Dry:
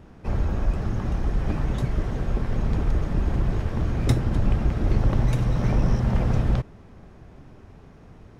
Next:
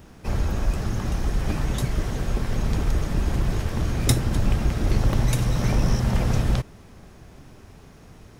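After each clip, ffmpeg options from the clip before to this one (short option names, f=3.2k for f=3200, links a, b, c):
-af "crystalizer=i=4:c=0"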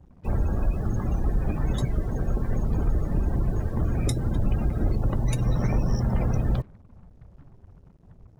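-af "alimiter=limit=-14dB:level=0:latency=1:release=158,afftdn=nr=29:nf=-35,acrusher=bits=8:mix=0:aa=0.5"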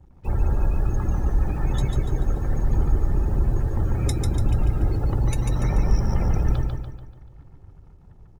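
-af "equalizer=f=460:w=3.5:g=-5,aecho=1:1:2.3:0.4,aecho=1:1:145|290|435|580|725|870:0.631|0.297|0.139|0.0655|0.0308|0.0145"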